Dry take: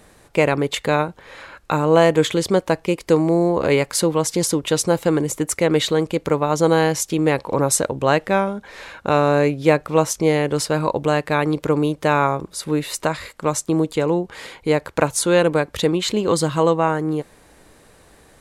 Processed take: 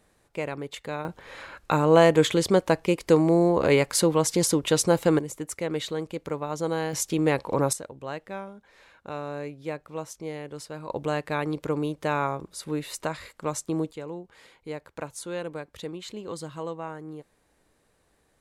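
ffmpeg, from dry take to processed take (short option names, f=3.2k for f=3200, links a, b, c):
-af "asetnsamples=n=441:p=0,asendcmd='1.05 volume volume -3dB;5.19 volume volume -12dB;6.93 volume volume -5dB;7.73 volume volume -18dB;10.9 volume volume -9dB;13.91 volume volume -17.5dB',volume=-14.5dB"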